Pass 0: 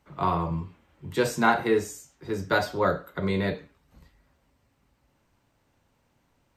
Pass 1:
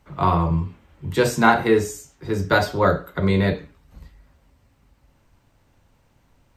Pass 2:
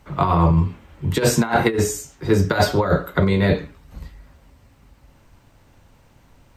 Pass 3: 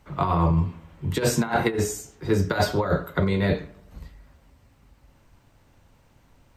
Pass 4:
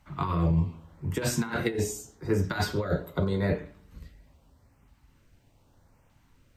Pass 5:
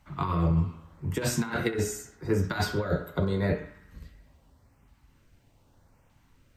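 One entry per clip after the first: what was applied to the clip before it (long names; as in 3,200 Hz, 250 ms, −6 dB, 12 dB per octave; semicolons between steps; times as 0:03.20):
low-shelf EQ 100 Hz +10.5 dB; mains-hum notches 60/120/180/240/300/360/420 Hz; level +5.5 dB
compressor whose output falls as the input rises −20 dBFS, ratio −0.5; level +4.5 dB
bucket-brigade delay 86 ms, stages 1,024, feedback 60%, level −22.5 dB; level −5 dB
auto-filter notch saw up 0.82 Hz 390–4,600 Hz; on a send at −17.5 dB: convolution reverb RT60 0.55 s, pre-delay 5 ms; on the sum: level −4 dB
feedback echo with a band-pass in the loop 65 ms, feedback 72%, band-pass 1,500 Hz, level −12 dB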